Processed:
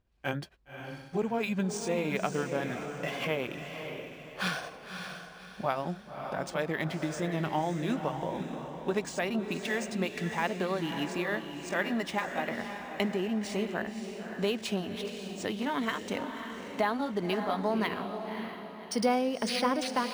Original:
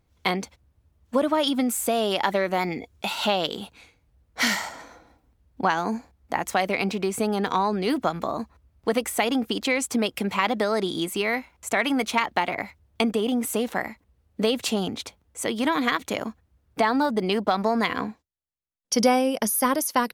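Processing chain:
pitch glide at a constant tempo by −5.5 semitones ending unshifted
feedback delay with all-pass diffusion 563 ms, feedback 41%, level −7 dB
linearly interpolated sample-rate reduction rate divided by 3×
level −6.5 dB

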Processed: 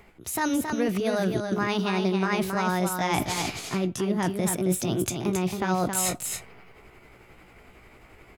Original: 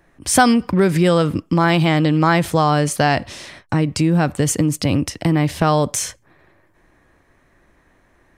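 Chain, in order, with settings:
pitch shift by two crossfaded delay taps +3.5 semitones
reversed playback
downward compressor 8 to 1, threshold −29 dBFS, peak gain reduction 20 dB
reversed playback
single-tap delay 271 ms −5.5 dB
level +5 dB

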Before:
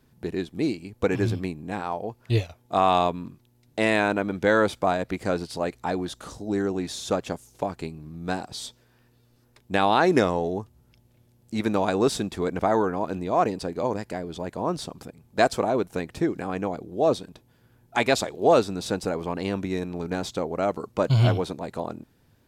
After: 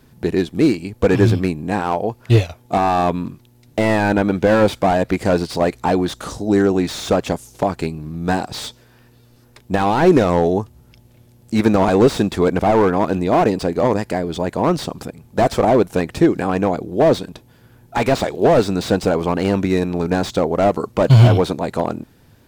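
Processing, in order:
boost into a limiter +12 dB
slew-rate limiting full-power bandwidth 230 Hz
level −1 dB

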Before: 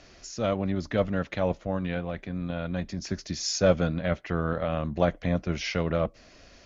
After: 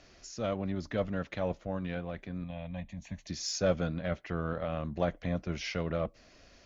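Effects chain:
in parallel at −9 dB: soft clipping −22.5 dBFS, distortion −9 dB
0:02.44–0:03.27: on the sum: phaser with its sweep stopped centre 1,400 Hz, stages 6
level −8 dB

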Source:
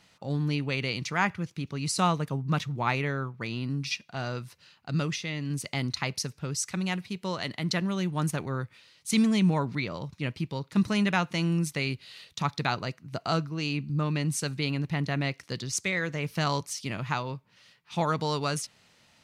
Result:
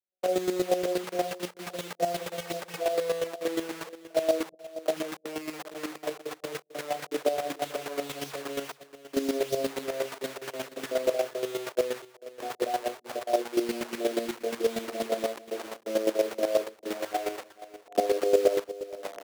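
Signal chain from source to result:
vocoder with a gliding carrier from F#3, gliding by −11 semitones
camcorder AGC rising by 43 dB per second
Chebyshev low-pass filter 730 Hz, order 10
double-tracking delay 22 ms −5 dB
in parallel at −3.5 dB: bit reduction 6 bits
on the sum: high-pass filter 420 Hz 24 dB per octave
on a send: single-tap delay 446 ms −15.5 dB
on the sum: downward expander −54 dBFS
square-wave tremolo 8.4 Hz, depth 65%, duty 20%
level +8.5 dB

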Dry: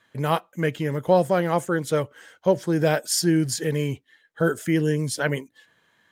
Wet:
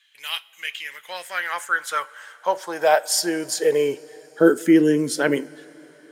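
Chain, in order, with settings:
high-pass filter sweep 2,800 Hz → 290 Hz, 0:00.61–0:04.50
coupled-rooms reverb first 0.23 s, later 4.5 s, from −21 dB, DRR 12.5 dB
level +2 dB

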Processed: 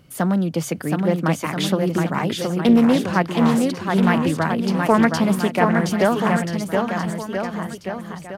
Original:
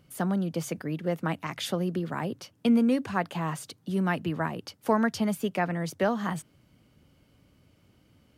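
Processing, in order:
on a send: bouncing-ball delay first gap 720 ms, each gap 0.85×, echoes 5
on the sum: highs frequency-modulated by the lows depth 0.24 ms
level +8 dB

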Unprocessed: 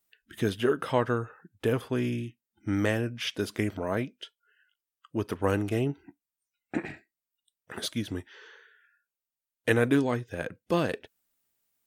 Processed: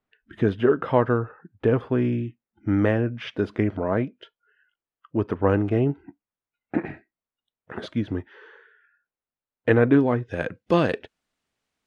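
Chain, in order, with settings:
Bessel low-pass filter 1,400 Hz, order 2, from 0:10.28 3,700 Hz
level +6.5 dB

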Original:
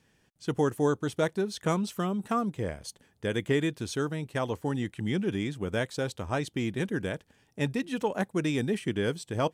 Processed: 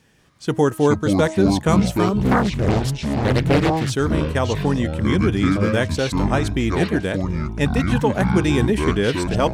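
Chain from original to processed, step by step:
hum removal 317.6 Hz, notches 7
delay with pitch and tempo change per echo 182 ms, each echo −7 semitones, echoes 3
0:02.22–0:03.93: highs frequency-modulated by the lows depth 0.82 ms
level +9 dB

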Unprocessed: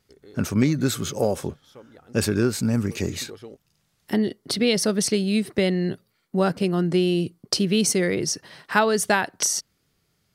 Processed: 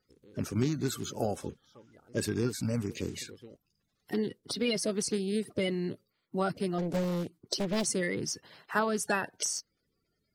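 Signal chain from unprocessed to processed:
spectral magnitudes quantised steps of 30 dB
0:06.78–0:07.87: highs frequency-modulated by the lows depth 0.86 ms
level −8.5 dB

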